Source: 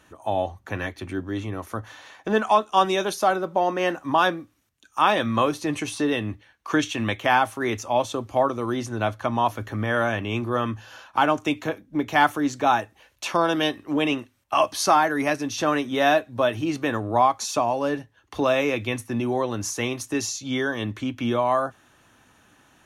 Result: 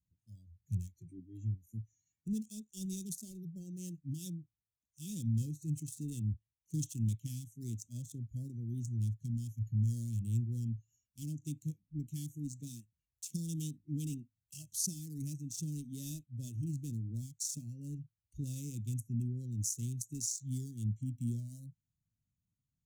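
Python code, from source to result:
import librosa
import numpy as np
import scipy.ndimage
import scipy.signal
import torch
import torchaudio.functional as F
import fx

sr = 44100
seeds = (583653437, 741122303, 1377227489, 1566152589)

y = fx.band_squash(x, sr, depth_pct=70, at=(13.33, 14.84))
y = fx.wiener(y, sr, points=9)
y = fx.noise_reduce_blind(y, sr, reduce_db=21)
y = scipy.signal.sosfilt(scipy.signal.ellip(3, 1.0, 80, [160.0, 6900.0], 'bandstop', fs=sr, output='sos'), y)
y = F.gain(torch.from_numpy(y), 1.0).numpy()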